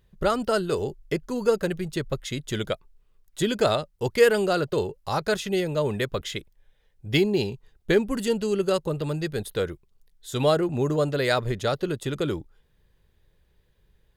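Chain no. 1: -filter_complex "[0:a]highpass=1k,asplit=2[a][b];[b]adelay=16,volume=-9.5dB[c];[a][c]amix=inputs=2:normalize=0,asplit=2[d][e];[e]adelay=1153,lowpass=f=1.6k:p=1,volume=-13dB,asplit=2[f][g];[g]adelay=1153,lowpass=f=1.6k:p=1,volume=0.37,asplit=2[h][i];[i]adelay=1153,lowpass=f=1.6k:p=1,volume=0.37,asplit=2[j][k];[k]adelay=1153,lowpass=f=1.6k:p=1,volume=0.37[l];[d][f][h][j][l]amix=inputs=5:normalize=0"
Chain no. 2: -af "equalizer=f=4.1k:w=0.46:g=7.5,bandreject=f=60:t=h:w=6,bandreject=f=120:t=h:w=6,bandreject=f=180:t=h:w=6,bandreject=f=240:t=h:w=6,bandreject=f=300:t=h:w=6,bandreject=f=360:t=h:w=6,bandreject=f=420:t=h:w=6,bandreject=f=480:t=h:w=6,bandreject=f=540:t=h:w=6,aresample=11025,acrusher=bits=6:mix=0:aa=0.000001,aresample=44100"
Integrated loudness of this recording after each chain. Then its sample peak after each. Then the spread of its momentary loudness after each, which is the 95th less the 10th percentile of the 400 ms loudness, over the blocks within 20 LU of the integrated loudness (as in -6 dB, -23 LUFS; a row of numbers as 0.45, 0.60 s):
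-32.5, -24.5 LUFS; -9.5, -2.5 dBFS; 16, 9 LU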